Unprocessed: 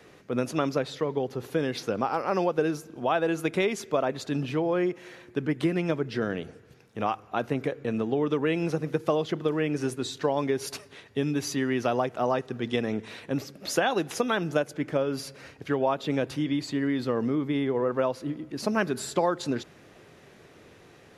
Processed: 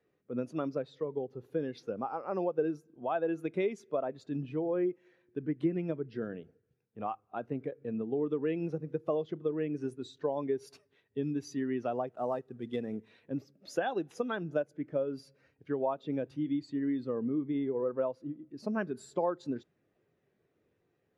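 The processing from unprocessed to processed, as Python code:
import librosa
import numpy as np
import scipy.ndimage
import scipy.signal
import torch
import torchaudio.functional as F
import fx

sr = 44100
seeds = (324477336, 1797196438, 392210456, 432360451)

y = fx.cvsd(x, sr, bps=64000, at=(12.07, 13.04))
y = fx.spectral_expand(y, sr, expansion=1.5)
y = y * librosa.db_to_amplitude(-8.5)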